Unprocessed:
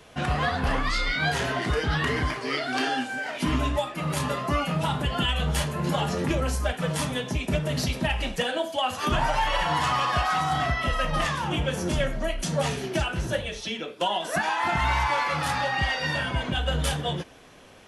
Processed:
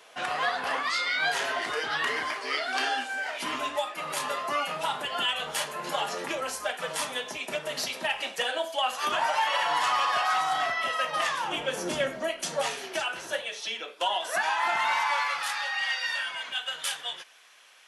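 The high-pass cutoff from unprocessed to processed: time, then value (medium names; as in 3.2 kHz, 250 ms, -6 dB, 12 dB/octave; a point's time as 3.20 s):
11.33 s 600 Hz
12.08 s 280 Hz
12.77 s 660 Hz
14.92 s 660 Hz
15.54 s 1.4 kHz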